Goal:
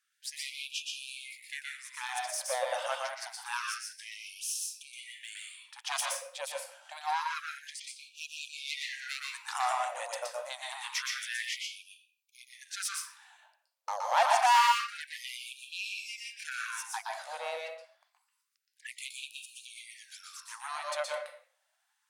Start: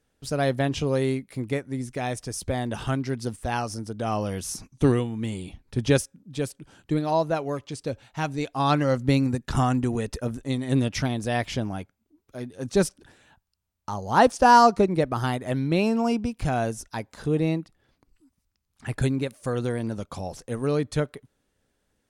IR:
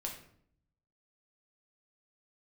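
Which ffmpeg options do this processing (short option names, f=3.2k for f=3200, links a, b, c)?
-filter_complex "[0:a]aeval=exprs='(tanh(8.91*val(0)+0.5)-tanh(0.5))/8.91':c=same,asplit=2[a][b];[1:a]atrim=start_sample=2205,afade=t=out:st=0.34:d=0.01,atrim=end_sample=15435,adelay=120[c];[b][c]afir=irnorm=-1:irlink=0,volume=0dB[d];[a][d]amix=inputs=2:normalize=0,afftfilt=real='re*gte(b*sr/1024,480*pow(2400/480,0.5+0.5*sin(2*PI*0.27*pts/sr)))':imag='im*gte(b*sr/1024,480*pow(2400/480,0.5+0.5*sin(2*PI*0.27*pts/sr)))':win_size=1024:overlap=0.75"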